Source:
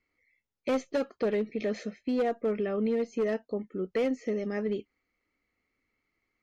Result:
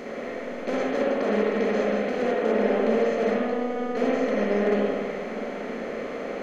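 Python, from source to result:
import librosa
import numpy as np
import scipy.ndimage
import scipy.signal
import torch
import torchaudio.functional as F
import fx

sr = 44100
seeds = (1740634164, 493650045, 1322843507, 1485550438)

p1 = fx.bin_compress(x, sr, power=0.2)
p2 = fx.robotise(p1, sr, hz=246.0, at=(3.31, 3.97))
p3 = p2 + fx.echo_bbd(p2, sr, ms=86, stages=1024, feedback_pct=66, wet_db=-9.5, dry=0)
p4 = fx.rev_spring(p3, sr, rt60_s=1.6, pass_ms=(49, 58), chirp_ms=50, drr_db=-4.0)
y = p4 * 10.0 ** (-6.5 / 20.0)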